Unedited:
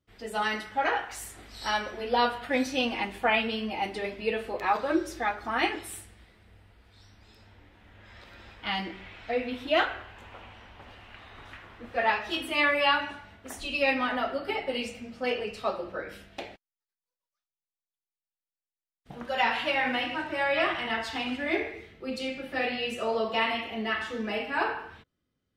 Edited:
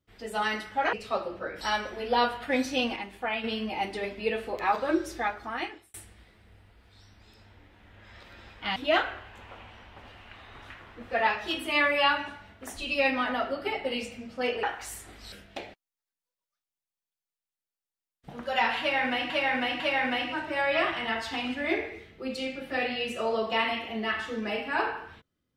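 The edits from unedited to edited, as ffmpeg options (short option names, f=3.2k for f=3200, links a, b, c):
-filter_complex "[0:a]asplit=11[a][b][c][d][e][f][g][h][i][j][k];[a]atrim=end=0.932[l];[b]atrim=start=15.458:end=16.142[m];[c]atrim=start=1.618:end=2.972[n];[d]atrim=start=2.968:end=3.452,asetpts=PTS-STARTPTS,volume=-6.5dB[o];[e]atrim=start=3.448:end=5.95,asetpts=PTS-STARTPTS,afade=t=out:st=1.762:d=0.74[p];[f]atrim=start=5.95:end=8.772,asetpts=PTS-STARTPTS,afade=t=in:d=0.004:c=hsin[q];[g]atrim=start=9.588:end=15.462[r];[h]atrim=start=0.928:end=1.622[s];[i]atrim=start=16.138:end=20.122[t];[j]atrim=start=19.618:end=20.122[u];[k]atrim=start=19.618[v];[l][m]acrossfade=d=0.004:c1=hsin:c2=hsin[w];[w][n]acrossfade=d=0.004:c1=hsin:c2=hsin[x];[x][o]acrossfade=d=0.004:c1=hsin:c2=hsin[y];[p][q]concat=n=2:v=0:a=1[z];[y][z]acrossfade=d=0.004:c1=hsin:c2=hsin[aa];[aa][r]acrossfade=d=0.004:c1=hsin:c2=hsin[ab];[ab][s]acrossfade=d=0.004:c1=hsin:c2=hsin[ac];[ac][t]acrossfade=d=0.004:c1=hsin:c2=hsin[ad];[ad][u]acrossfade=d=0.004:c1=hsin:c2=hsin[ae];[ae][v]acrossfade=d=0.004:c1=hsin:c2=hsin"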